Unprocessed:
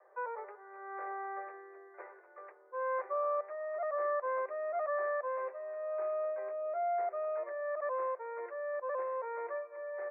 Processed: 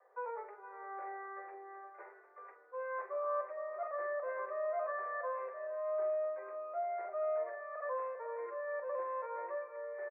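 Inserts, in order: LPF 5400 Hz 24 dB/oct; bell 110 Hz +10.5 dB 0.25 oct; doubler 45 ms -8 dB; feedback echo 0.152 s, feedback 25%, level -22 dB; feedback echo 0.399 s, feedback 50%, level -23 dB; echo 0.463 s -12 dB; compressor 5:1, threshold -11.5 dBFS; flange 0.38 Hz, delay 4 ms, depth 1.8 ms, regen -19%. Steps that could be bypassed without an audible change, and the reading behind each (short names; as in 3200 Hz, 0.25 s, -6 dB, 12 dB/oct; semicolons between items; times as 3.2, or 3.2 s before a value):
LPF 5400 Hz: input band ends at 1900 Hz; bell 110 Hz: input band starts at 380 Hz; compressor, threshold -11.5 dBFS: input peak -24.5 dBFS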